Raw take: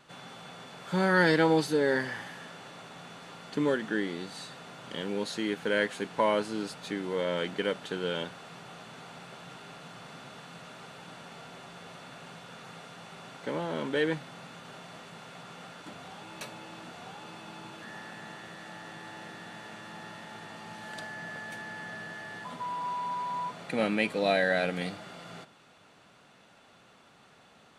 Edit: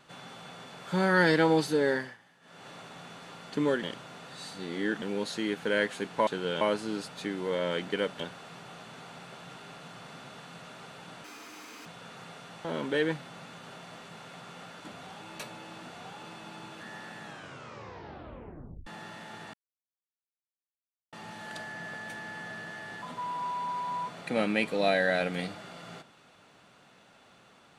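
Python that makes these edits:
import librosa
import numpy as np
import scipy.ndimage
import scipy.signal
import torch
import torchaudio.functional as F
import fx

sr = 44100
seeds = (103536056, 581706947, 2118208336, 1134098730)

y = fx.edit(x, sr, fx.fade_down_up(start_s=1.88, length_s=0.82, db=-18.5, fade_s=0.29),
    fx.reverse_span(start_s=3.83, length_s=1.19),
    fx.move(start_s=7.86, length_s=0.34, to_s=6.27),
    fx.speed_span(start_s=11.24, length_s=1.09, speed=1.77),
    fx.cut(start_s=13.12, length_s=0.54),
    fx.tape_stop(start_s=18.23, length_s=1.65),
    fx.insert_silence(at_s=20.55, length_s=1.59), tone=tone)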